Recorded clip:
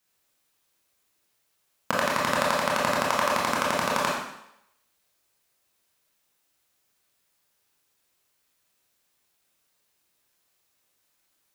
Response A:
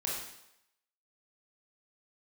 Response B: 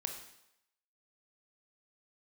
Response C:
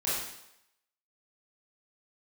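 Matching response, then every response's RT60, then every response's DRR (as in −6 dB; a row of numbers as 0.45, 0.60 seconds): A; 0.80, 0.80, 0.80 seconds; −4.5, 3.5, −9.5 decibels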